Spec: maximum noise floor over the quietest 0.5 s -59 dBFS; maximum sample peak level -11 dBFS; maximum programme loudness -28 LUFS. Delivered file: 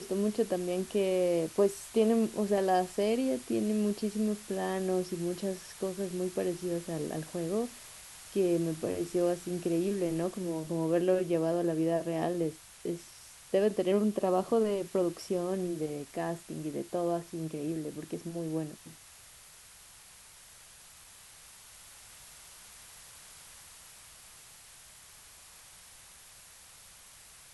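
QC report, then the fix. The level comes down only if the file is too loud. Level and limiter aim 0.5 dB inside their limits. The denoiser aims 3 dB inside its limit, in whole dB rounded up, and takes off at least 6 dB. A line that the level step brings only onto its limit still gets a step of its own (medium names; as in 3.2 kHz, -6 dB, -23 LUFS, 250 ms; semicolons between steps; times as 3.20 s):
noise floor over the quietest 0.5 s -54 dBFS: fail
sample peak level -14.5 dBFS: pass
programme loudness -32.0 LUFS: pass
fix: noise reduction 8 dB, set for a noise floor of -54 dBFS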